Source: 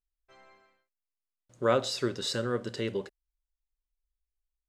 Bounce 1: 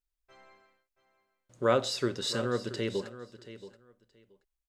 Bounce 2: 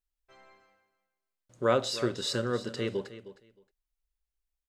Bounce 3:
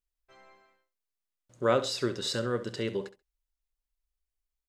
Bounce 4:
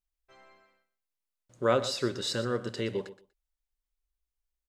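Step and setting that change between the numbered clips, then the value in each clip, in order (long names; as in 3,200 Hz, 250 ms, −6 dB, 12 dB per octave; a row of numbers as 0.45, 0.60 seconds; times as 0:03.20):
repeating echo, delay time: 677, 311, 67, 121 milliseconds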